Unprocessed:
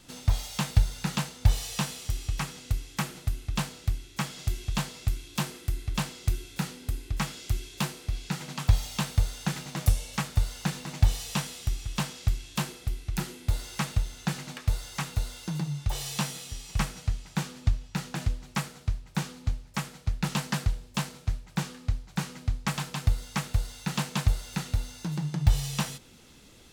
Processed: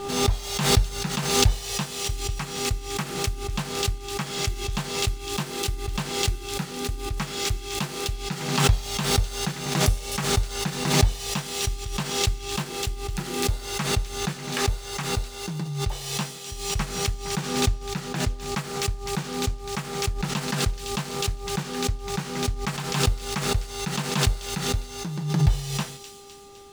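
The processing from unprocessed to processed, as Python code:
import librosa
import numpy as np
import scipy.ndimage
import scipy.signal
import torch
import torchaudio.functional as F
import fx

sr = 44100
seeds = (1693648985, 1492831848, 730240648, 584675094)

y = scipy.ndimage.median_filter(x, 3, mode='constant')
y = fx.dmg_buzz(y, sr, base_hz=400.0, harmonics=3, level_db=-48.0, tilt_db=-5, odd_only=False)
y = fx.echo_wet_highpass(y, sr, ms=255, feedback_pct=57, hz=3500.0, wet_db=-7.0)
y = fx.pre_swell(y, sr, db_per_s=59.0)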